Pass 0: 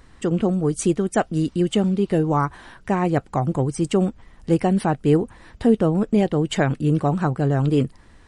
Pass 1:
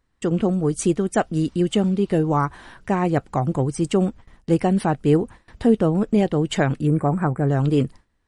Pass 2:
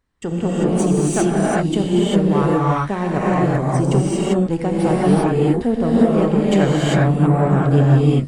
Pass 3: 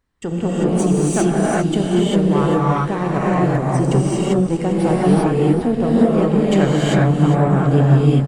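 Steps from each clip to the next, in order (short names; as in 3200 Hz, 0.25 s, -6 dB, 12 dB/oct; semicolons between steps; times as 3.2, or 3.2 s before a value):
spectral gain 6.87–7.48, 2500–7400 Hz -20 dB; gate with hold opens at -35 dBFS
one diode to ground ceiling -15.5 dBFS; non-linear reverb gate 0.42 s rising, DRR -7 dB; gain -2 dB
feedback echo 0.398 s, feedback 28%, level -11 dB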